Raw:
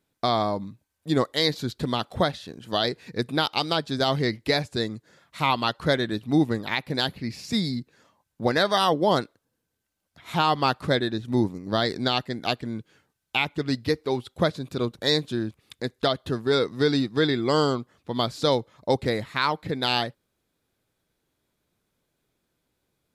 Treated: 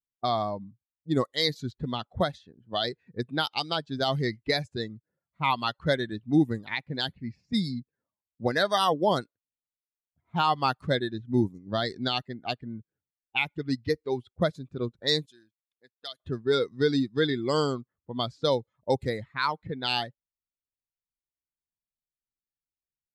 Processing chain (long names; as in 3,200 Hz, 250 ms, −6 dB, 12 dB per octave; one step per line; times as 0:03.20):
spectral dynamics exaggerated over time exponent 1.5
low-pass that shuts in the quiet parts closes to 530 Hz, open at −23.5 dBFS
0:15.26–0:16.20: first difference